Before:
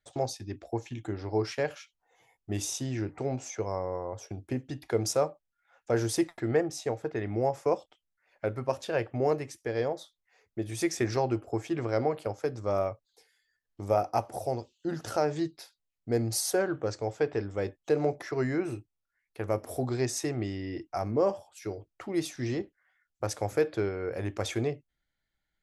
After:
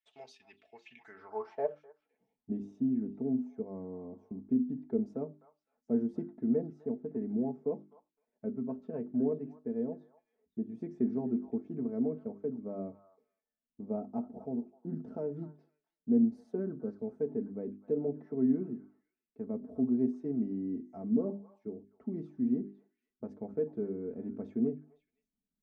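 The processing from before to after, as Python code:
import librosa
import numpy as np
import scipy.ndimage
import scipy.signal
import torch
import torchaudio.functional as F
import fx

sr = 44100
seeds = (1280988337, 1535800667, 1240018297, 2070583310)

y = fx.tilt_eq(x, sr, slope=-3.0)
y = fx.hum_notches(y, sr, base_hz=50, count=8)
y = y + 0.85 * np.pad(y, (int(4.6 * sr / 1000.0), 0))[:len(y)]
y = fx.echo_stepped(y, sr, ms=255, hz=1200.0, octaves=1.4, feedback_pct=70, wet_db=-9.0)
y = fx.filter_sweep_bandpass(y, sr, from_hz=2700.0, to_hz=250.0, start_s=0.87, end_s=2.15, q=3.9)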